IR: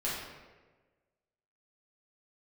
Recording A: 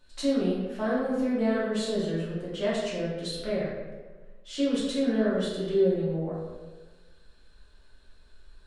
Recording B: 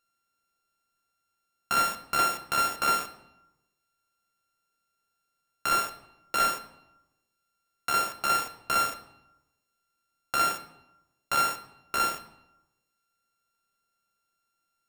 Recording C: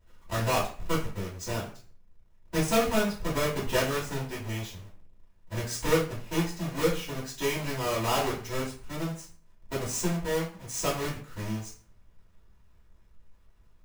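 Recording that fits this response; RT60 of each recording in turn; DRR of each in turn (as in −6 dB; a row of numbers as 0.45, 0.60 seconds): A; 1.3, 0.90, 0.45 seconds; −8.5, 8.0, −7.5 decibels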